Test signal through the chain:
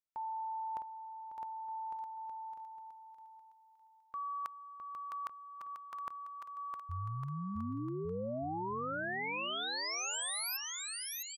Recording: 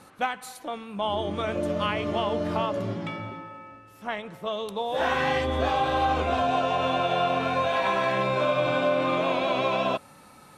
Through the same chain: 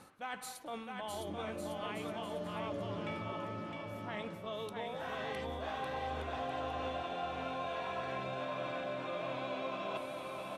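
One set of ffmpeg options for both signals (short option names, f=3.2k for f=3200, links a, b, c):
-af "areverse,acompressor=threshold=-34dB:ratio=12,areverse,aecho=1:1:660|1155|1526|1805|2014:0.631|0.398|0.251|0.158|0.1,volume=-4dB"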